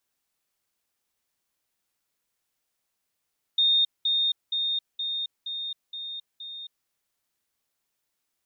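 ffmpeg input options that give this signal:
ffmpeg -f lavfi -i "aevalsrc='pow(10,(-18-3*floor(t/0.47))/20)*sin(2*PI*3670*t)*clip(min(mod(t,0.47),0.27-mod(t,0.47))/0.005,0,1)':duration=3.29:sample_rate=44100" out.wav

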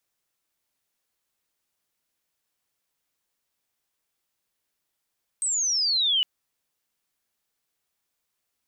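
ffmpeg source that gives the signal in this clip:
ffmpeg -f lavfi -i "aevalsrc='pow(10,(-23+4*t/0.81)/20)*sin(2*PI*8400*0.81/log(2900/8400)*(exp(log(2900/8400)*t/0.81)-1))':duration=0.81:sample_rate=44100" out.wav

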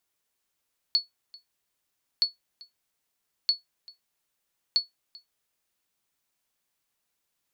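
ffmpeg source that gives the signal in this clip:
ffmpeg -f lavfi -i "aevalsrc='0.2*(sin(2*PI*4410*mod(t,1.27))*exp(-6.91*mod(t,1.27)/0.15)+0.0631*sin(2*PI*4410*max(mod(t,1.27)-0.39,0))*exp(-6.91*max(mod(t,1.27)-0.39,0)/0.15))':duration=5.08:sample_rate=44100" out.wav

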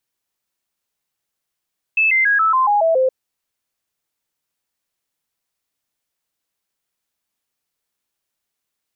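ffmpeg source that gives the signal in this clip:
ffmpeg -f lavfi -i "aevalsrc='0.251*clip(min(mod(t,0.14),0.14-mod(t,0.14))/0.005,0,1)*sin(2*PI*2620*pow(2,-floor(t/0.14)/3)*mod(t,0.14))':duration=1.12:sample_rate=44100" out.wav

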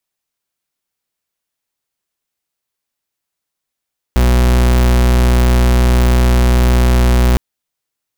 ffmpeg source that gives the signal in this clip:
ffmpeg -f lavfi -i "aevalsrc='0.316*(2*lt(mod(61.4*t,1),0.41)-1)':duration=3.21:sample_rate=44100" out.wav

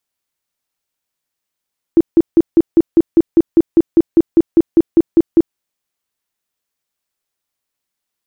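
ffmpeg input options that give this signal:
ffmpeg -f lavfi -i "aevalsrc='0.631*sin(2*PI*332*mod(t,0.2))*lt(mod(t,0.2),12/332)':duration=3.6:sample_rate=44100" out.wav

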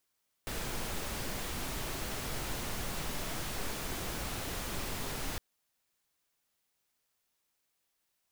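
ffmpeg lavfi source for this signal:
ffmpeg -f lavfi -i "anoisesrc=color=pink:amplitude=0.0724:duration=4.91:sample_rate=44100:seed=1" out.wav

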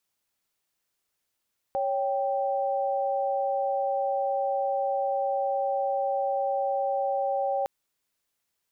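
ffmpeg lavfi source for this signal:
ffmpeg -f lavfi -i "aevalsrc='0.0447*(sin(2*PI*554.37*t)+sin(2*PI*783.99*t))':duration=5.91:sample_rate=44100" out.wav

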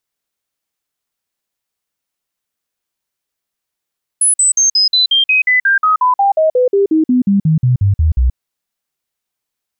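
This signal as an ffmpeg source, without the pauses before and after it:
ffmpeg -f lavfi -i "aevalsrc='0.398*clip(min(mod(t,0.18),0.13-mod(t,0.18))/0.005,0,1)*sin(2*PI*10100*pow(2,-floor(t/0.18)/3)*mod(t,0.18))':duration=4.14:sample_rate=44100" out.wav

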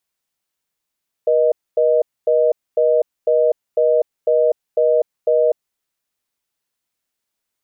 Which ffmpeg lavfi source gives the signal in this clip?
ffmpeg -f lavfi -i "aevalsrc='0.188*(sin(2*PI*480*t)+sin(2*PI*620*t))*clip(min(mod(t,0.5),0.25-mod(t,0.5))/0.005,0,1)':duration=4.29:sample_rate=44100" out.wav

